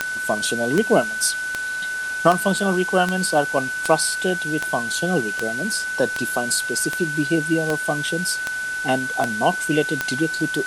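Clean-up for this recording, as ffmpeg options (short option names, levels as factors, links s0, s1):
-af "adeclick=t=4,bandreject=f=1500:w=30,afwtdn=0.016"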